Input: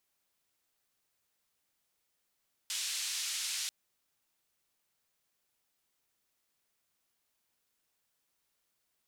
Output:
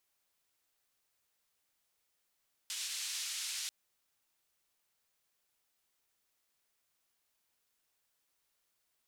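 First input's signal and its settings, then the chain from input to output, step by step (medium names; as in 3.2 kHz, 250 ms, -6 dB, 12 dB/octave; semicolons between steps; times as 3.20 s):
noise band 2.7–7.4 kHz, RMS -36.5 dBFS 0.99 s
peaking EQ 180 Hz -4 dB 2.1 oct; peak limiter -30 dBFS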